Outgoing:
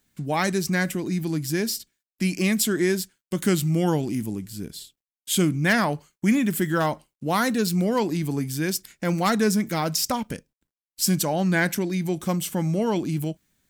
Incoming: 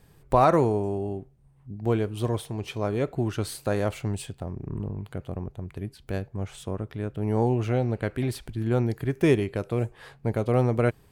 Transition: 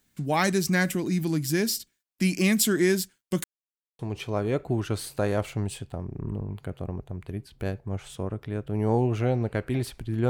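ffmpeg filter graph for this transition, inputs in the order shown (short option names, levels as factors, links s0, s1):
-filter_complex "[0:a]apad=whole_dur=10.29,atrim=end=10.29,asplit=2[s0][s1];[s0]atrim=end=3.44,asetpts=PTS-STARTPTS,afade=t=out:st=3.436:d=0.004:c=hsin[s2];[s1]atrim=start=3.44:end=3.99,asetpts=PTS-STARTPTS,volume=0[s3];[1:a]atrim=start=2.47:end=8.77,asetpts=PTS-STARTPTS,afade=t=in:d=0.004:c=hsin[s4];[s2][s3][s4]concat=n=3:v=0:a=1"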